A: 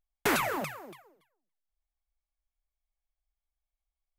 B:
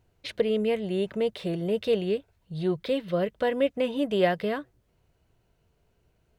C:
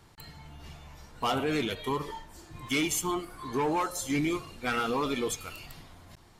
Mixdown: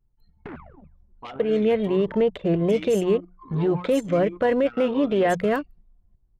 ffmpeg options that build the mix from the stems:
ffmpeg -i stem1.wav -i stem2.wav -i stem3.wav -filter_complex "[0:a]bass=frequency=250:gain=11,treble=frequency=4000:gain=-12,adelay=200,volume=-11dB[link_01];[1:a]dynaudnorm=framelen=130:gausssize=9:maxgain=10.5dB,lowpass=2300,alimiter=limit=-12dB:level=0:latency=1:release=21,adelay=1000,volume=-1dB[link_02];[2:a]alimiter=level_in=7dB:limit=-24dB:level=0:latency=1:release=70,volume=-7dB,volume=1dB[link_03];[link_01][link_02][link_03]amix=inputs=3:normalize=0,anlmdn=10,bandreject=frequency=60:width_type=h:width=6,bandreject=frequency=120:width_type=h:width=6,bandreject=frequency=180:width_type=h:width=6" out.wav

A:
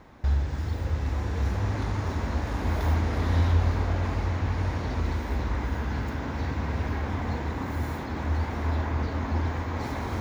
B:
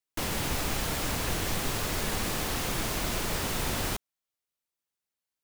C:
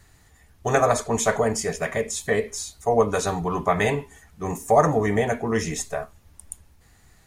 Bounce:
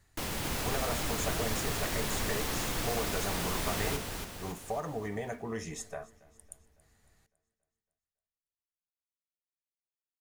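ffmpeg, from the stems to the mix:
ffmpeg -i stem1.wav -i stem2.wav -i stem3.wav -filter_complex "[1:a]volume=-4.5dB,asplit=2[link_01][link_02];[link_02]volume=-5dB[link_03];[2:a]acompressor=threshold=-20dB:ratio=6,volume=-12dB,asplit=2[link_04][link_05];[link_05]volume=-22.5dB[link_06];[link_03][link_06]amix=inputs=2:normalize=0,aecho=0:1:278|556|834|1112|1390|1668|1946|2224:1|0.53|0.281|0.149|0.0789|0.0418|0.0222|0.0117[link_07];[link_01][link_04][link_07]amix=inputs=3:normalize=0" out.wav

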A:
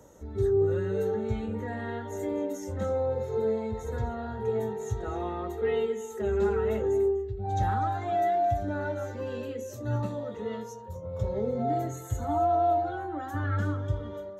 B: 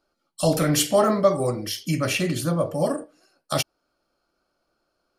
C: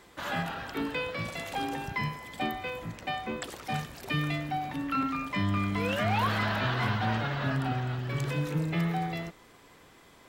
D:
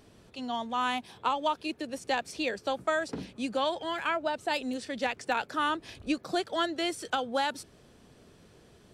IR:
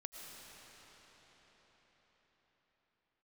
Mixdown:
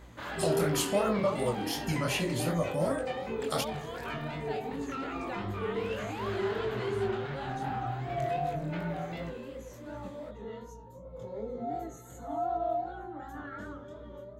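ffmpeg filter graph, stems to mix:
-filter_complex "[0:a]highpass=frequency=170:width=0.5412,highpass=frequency=170:width=1.3066,volume=-4.5dB[link_01];[1:a]acompressor=threshold=-22dB:ratio=3,volume=-2dB[link_02];[2:a]asoftclip=type=tanh:threshold=-28dB,volume=1.5dB[link_03];[3:a]volume=-6dB[link_04];[link_03][link_04]amix=inputs=2:normalize=0,highshelf=frequency=4500:gain=-6.5,acompressor=threshold=-32dB:ratio=6,volume=0dB[link_05];[link_01][link_02][link_05]amix=inputs=3:normalize=0,aeval=exprs='val(0)+0.00447*(sin(2*PI*60*n/s)+sin(2*PI*2*60*n/s)/2+sin(2*PI*3*60*n/s)/3+sin(2*PI*4*60*n/s)/4+sin(2*PI*5*60*n/s)/5)':channel_layout=same,bandreject=frequency=5600:width=12,flanger=delay=18:depth=8:speed=2.7"

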